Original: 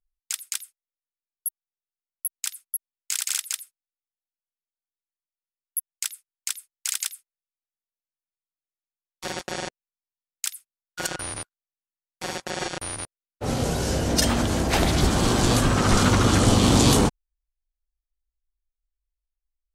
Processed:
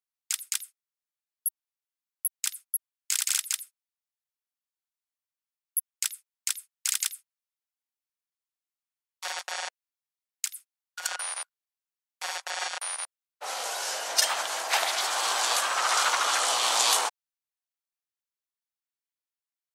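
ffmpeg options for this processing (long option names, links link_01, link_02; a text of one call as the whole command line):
ffmpeg -i in.wav -filter_complex "[0:a]asettb=1/sr,asplit=3[link_01][link_02][link_03];[link_01]atrim=end=10.454[link_04];[link_02]atrim=start=10.45:end=11.06,asetpts=PTS-STARTPTS,afade=type=in:duration=0.004:curve=qsin,afade=type=out:start_time=0.606:duration=0.004:curve=qsin,acompressor=threshold=-32dB:ratio=6:attack=3.2:release=140:knee=1:detection=peak[link_05];[link_03]atrim=start=11.056[link_06];[link_04][link_05]acrossfade=duration=0.004:curve1=hsin:curve2=qsin[link_07];[link_07][link_06]acrossfade=duration=0.004:curve1=qsin:curve2=hsin,highpass=frequency=740:width=0.5412,highpass=frequency=740:width=1.3066" out.wav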